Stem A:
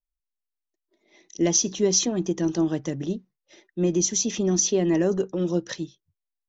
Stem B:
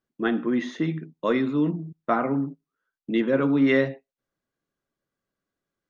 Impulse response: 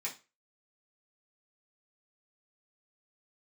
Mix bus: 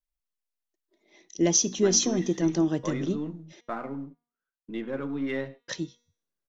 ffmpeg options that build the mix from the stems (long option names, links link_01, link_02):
-filter_complex "[0:a]volume=-1dB,asplit=3[link_01][link_02][link_03];[link_01]atrim=end=3.61,asetpts=PTS-STARTPTS,afade=type=out:start_time=3.606:duration=0.004:curve=hsin[link_04];[link_02]atrim=start=3.61:end=5.68,asetpts=PTS-STARTPTS,volume=0[link_05];[link_03]atrim=start=5.68,asetpts=PTS-STARTPTS,afade=type=in:duration=0.004:curve=hsin[link_06];[link_04][link_05][link_06]concat=n=3:v=0:a=1[link_07];[1:a]aeval=exprs='if(lt(val(0),0),0.708*val(0),val(0))':channel_layout=same,adelay=1600,volume=-9.5dB[link_08];[link_07][link_08]amix=inputs=2:normalize=0,bandreject=frequency=239.3:width_type=h:width=4,bandreject=frequency=478.6:width_type=h:width=4,bandreject=frequency=717.9:width_type=h:width=4,bandreject=frequency=957.2:width_type=h:width=4,bandreject=frequency=1196.5:width_type=h:width=4,bandreject=frequency=1435.8:width_type=h:width=4,bandreject=frequency=1675.1:width_type=h:width=4,bandreject=frequency=1914.4:width_type=h:width=4,bandreject=frequency=2153.7:width_type=h:width=4,bandreject=frequency=2393:width_type=h:width=4,bandreject=frequency=2632.3:width_type=h:width=4,bandreject=frequency=2871.6:width_type=h:width=4,bandreject=frequency=3110.9:width_type=h:width=4,bandreject=frequency=3350.2:width_type=h:width=4,bandreject=frequency=3589.5:width_type=h:width=4,bandreject=frequency=3828.8:width_type=h:width=4,bandreject=frequency=4068.1:width_type=h:width=4,bandreject=frequency=4307.4:width_type=h:width=4,bandreject=frequency=4546.7:width_type=h:width=4,bandreject=frequency=4786:width_type=h:width=4,bandreject=frequency=5025.3:width_type=h:width=4,bandreject=frequency=5264.6:width_type=h:width=4,bandreject=frequency=5503.9:width_type=h:width=4,bandreject=frequency=5743.2:width_type=h:width=4,bandreject=frequency=5982.5:width_type=h:width=4,bandreject=frequency=6221.8:width_type=h:width=4,bandreject=frequency=6461.1:width_type=h:width=4,bandreject=frequency=6700.4:width_type=h:width=4,bandreject=frequency=6939.7:width_type=h:width=4,bandreject=frequency=7179:width_type=h:width=4,bandreject=frequency=7418.3:width_type=h:width=4,bandreject=frequency=7657.6:width_type=h:width=4,bandreject=frequency=7896.9:width_type=h:width=4,bandreject=frequency=8136.2:width_type=h:width=4,bandreject=frequency=8375.5:width_type=h:width=4,bandreject=frequency=8614.8:width_type=h:width=4,bandreject=frequency=8854.1:width_type=h:width=4"